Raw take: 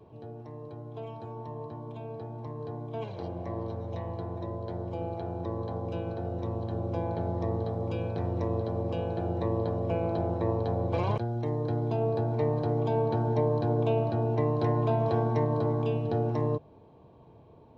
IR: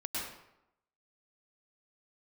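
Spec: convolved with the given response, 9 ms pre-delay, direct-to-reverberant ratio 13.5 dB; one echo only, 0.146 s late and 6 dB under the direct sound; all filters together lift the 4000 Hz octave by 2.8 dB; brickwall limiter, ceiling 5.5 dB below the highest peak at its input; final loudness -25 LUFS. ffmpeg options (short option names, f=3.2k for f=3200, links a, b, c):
-filter_complex "[0:a]equalizer=f=4k:t=o:g=3.5,alimiter=limit=-19.5dB:level=0:latency=1,aecho=1:1:146:0.501,asplit=2[a][b];[1:a]atrim=start_sample=2205,adelay=9[c];[b][c]afir=irnorm=-1:irlink=0,volume=-17dB[d];[a][d]amix=inputs=2:normalize=0,volume=4.5dB"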